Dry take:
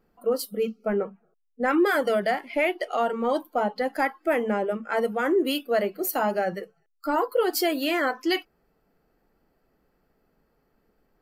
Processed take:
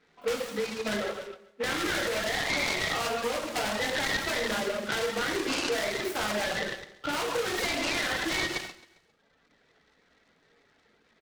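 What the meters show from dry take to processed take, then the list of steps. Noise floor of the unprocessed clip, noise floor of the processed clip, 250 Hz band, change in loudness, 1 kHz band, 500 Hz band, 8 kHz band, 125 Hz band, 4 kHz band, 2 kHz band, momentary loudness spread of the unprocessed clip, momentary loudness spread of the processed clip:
−71 dBFS, −67 dBFS, −8.0 dB, −3.5 dB, −6.0 dB, −7.0 dB, +5.0 dB, +1.0 dB, +4.0 dB, +1.0 dB, 6 LU, 6 LU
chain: high shelf with overshoot 3,000 Hz −12 dB, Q 3
mains-hum notches 50/100/150/200/250/300/350/400 Hz
in parallel at −8 dB: wrap-around overflow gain 17.5 dB
on the sum: reverb whose tail is shaped and stops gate 380 ms falling, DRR −5 dB
reverb reduction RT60 0.99 s
downward compressor, threshold −22 dBFS, peak gain reduction 12 dB
meter weighting curve D
flanger 0.85 Hz, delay 6.8 ms, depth 3.1 ms, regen −71%
brickwall limiter −20.5 dBFS, peak gain reduction 9.5 dB
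on a send: repeating echo 134 ms, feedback 46%, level −19 dB
on the sum: short delay modulated by noise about 1,600 Hz, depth 0.063 ms

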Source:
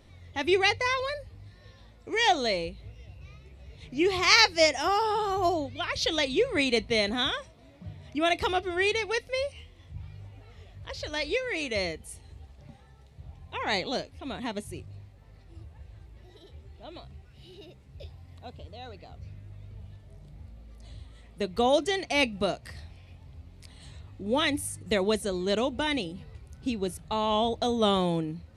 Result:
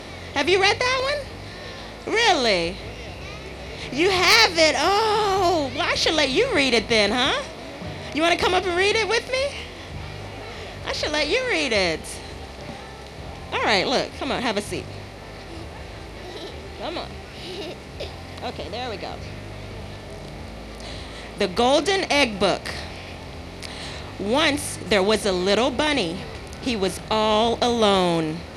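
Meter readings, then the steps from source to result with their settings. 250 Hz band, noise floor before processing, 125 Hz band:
+6.0 dB, −54 dBFS, +7.0 dB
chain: compressor on every frequency bin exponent 0.6
wave folding −6.5 dBFS
level +2.5 dB

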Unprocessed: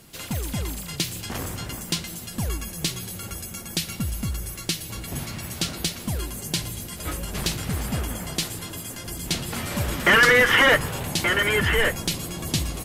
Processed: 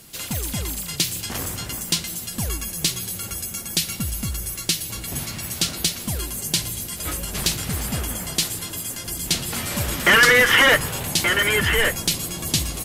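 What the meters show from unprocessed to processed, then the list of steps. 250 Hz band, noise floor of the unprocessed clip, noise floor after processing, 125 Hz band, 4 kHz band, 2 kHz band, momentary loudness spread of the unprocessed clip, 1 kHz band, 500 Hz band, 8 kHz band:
0.0 dB, −38 dBFS, −35 dBFS, 0.0 dB, +4.5 dB, +2.0 dB, 16 LU, +1.0 dB, 0.0 dB, +6.5 dB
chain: high-shelf EQ 3,000 Hz +7.5 dB

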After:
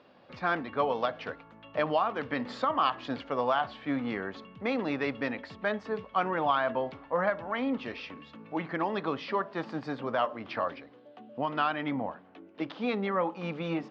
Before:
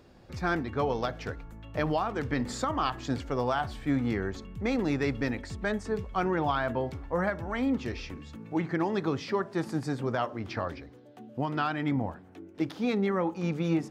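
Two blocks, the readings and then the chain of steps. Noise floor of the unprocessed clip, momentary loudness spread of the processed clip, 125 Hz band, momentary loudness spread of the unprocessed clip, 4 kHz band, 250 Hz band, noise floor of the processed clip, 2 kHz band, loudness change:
−52 dBFS, 11 LU, −9.0 dB, 10 LU, +1.0 dB, −4.0 dB, −55 dBFS, +1.0 dB, −1.0 dB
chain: loudspeaker in its box 240–4,200 Hz, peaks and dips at 360 Hz −7 dB, 590 Hz +4 dB, 1,100 Hz +5 dB, 2,900 Hz +4 dB

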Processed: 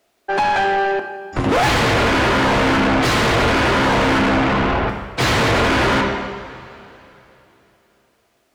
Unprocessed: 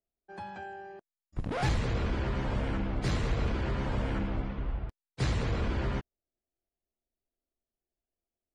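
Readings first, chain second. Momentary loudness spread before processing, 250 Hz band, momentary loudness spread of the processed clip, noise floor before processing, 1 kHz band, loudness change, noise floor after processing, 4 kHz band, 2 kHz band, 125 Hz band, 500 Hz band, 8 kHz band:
13 LU, +17.0 dB, 8 LU, below −85 dBFS, +23.0 dB, +16.5 dB, −63 dBFS, +22.0 dB, +23.0 dB, +9.0 dB, +19.5 dB, +20.5 dB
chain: coupled-rooms reverb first 0.97 s, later 3.3 s, from −19 dB, DRR 6 dB
mid-hump overdrive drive 37 dB, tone 2,700 Hz, clips at −12.5 dBFS
level +4.5 dB

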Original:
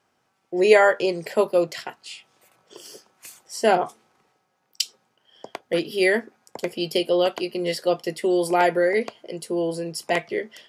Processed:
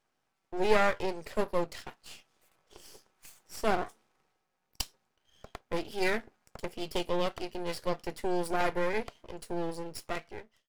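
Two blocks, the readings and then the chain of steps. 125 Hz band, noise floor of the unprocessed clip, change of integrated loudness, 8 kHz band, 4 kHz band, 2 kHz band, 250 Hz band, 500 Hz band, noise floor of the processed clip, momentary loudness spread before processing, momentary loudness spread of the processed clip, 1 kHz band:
−5.5 dB, −71 dBFS, −10.5 dB, −10.0 dB, −10.5 dB, −10.0 dB, −10.0 dB, −12.0 dB, −80 dBFS, 16 LU, 17 LU, −8.5 dB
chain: fade-out on the ending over 0.75 s
half-wave rectification
level −6 dB

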